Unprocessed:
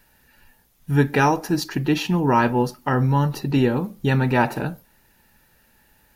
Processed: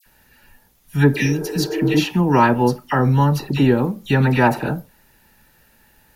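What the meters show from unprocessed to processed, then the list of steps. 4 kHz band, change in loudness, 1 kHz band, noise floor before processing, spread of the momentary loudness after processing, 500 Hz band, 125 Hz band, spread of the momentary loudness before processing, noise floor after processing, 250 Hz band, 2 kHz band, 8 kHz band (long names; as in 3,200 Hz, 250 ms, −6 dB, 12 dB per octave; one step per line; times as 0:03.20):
+3.5 dB, +3.0 dB, +2.0 dB, −60 dBFS, 7 LU, +3.0 dB, +3.5 dB, 5 LU, −57 dBFS, +3.5 dB, +2.5 dB, +3.5 dB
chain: all-pass dispersion lows, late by 62 ms, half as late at 1,900 Hz
healed spectral selection 0:01.15–0:01.94, 310–1,700 Hz both
level +3.5 dB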